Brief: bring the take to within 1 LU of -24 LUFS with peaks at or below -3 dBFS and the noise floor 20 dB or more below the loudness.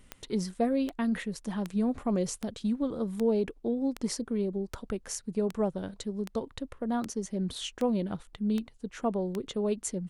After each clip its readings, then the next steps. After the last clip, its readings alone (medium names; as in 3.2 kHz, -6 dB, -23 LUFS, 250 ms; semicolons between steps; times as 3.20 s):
clicks found 13; loudness -32.0 LUFS; peak level -16.0 dBFS; loudness target -24.0 LUFS
-> de-click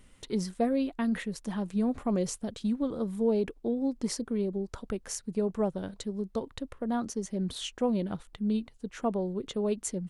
clicks found 0; loudness -32.0 LUFS; peak level -16.0 dBFS; loudness target -24.0 LUFS
-> trim +8 dB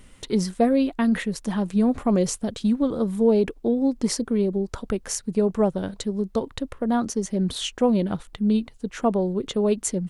loudness -24.0 LUFS; peak level -8.0 dBFS; noise floor -50 dBFS